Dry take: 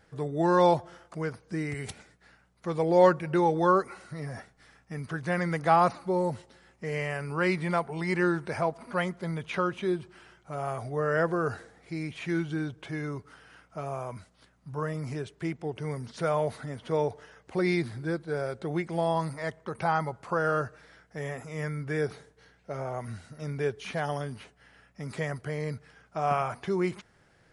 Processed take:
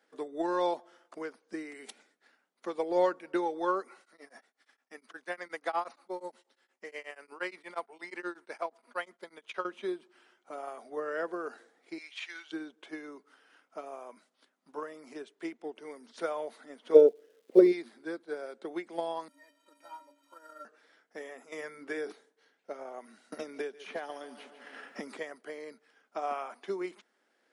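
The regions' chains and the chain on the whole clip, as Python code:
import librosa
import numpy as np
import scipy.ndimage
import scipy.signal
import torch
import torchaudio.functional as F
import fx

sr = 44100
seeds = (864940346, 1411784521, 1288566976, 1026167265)

y = fx.chain(x, sr, fx.low_shelf(hz=390.0, db=-9.5),
    fx.tremolo_abs(hz=8.4), at=(4.0, 9.65))
y = fx.chain(y, sr, fx.bandpass_edges(low_hz=790.0, high_hz=4900.0),
    fx.tilt_eq(slope=4.0), at=(11.98, 12.52))
y = fx.low_shelf_res(y, sr, hz=660.0, db=11.0, q=3.0, at=(16.94, 17.71), fade=0.02)
y = fx.dmg_crackle(y, sr, seeds[0], per_s=500.0, level_db=-41.0, at=(16.94, 17.71), fade=0.02)
y = fx.upward_expand(y, sr, threshold_db=-30.0, expansion=1.5, at=(16.94, 17.71), fade=0.02)
y = fx.chain(y, sr, fx.delta_mod(bps=64000, step_db=-38.5),
    fx.stiff_resonator(f0_hz=280.0, decay_s=0.33, stiffness=0.03), at=(19.28, 20.65))
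y = fx.chain(y, sr, fx.hum_notches(base_hz=60, count=8),
    fx.env_flatten(amount_pct=50), at=(21.52, 22.12))
y = fx.chain(y, sr, fx.echo_feedback(ms=142, feedback_pct=43, wet_db=-14.5),
    fx.band_squash(depth_pct=100), at=(23.32, 25.17))
y = scipy.signal.sosfilt(scipy.signal.butter(8, 230.0, 'highpass', fs=sr, output='sos'), y)
y = fx.peak_eq(y, sr, hz=3400.0, db=3.0, octaves=0.42)
y = fx.transient(y, sr, attack_db=7, sustain_db=-1)
y = y * 10.0 ** (-9.0 / 20.0)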